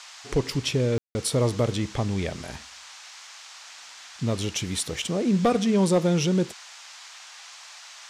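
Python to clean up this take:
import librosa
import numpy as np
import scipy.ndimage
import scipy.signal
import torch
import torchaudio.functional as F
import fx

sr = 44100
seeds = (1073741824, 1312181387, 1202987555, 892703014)

y = fx.fix_declip(x, sr, threshold_db=-13.5)
y = fx.fix_ambience(y, sr, seeds[0], print_start_s=7.18, print_end_s=7.68, start_s=0.98, end_s=1.15)
y = fx.noise_reduce(y, sr, print_start_s=7.18, print_end_s=7.68, reduce_db=25.0)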